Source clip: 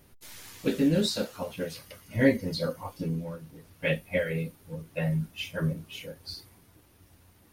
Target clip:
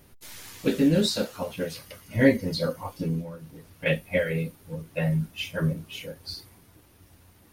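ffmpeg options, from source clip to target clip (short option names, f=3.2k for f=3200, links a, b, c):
-filter_complex "[0:a]asettb=1/sr,asplit=3[a][b][c];[a]atrim=end=3.214[d];[b]atrim=start=3.21:end=3.86,asetpts=PTS-STARTPTS,afade=t=in:d=0.004:c=qsin,afade=t=out:st=0.646:d=0.004:c=qsin,acompressor=threshold=-38dB:ratio=6[e];[c]atrim=start=3.856[f];[d][e]acrossfade=d=0.004:c1=hsin:c2=qsin[g];[g][f]acrossfade=d=0.004:c1=qsin:c2=hsin,volume=3dB"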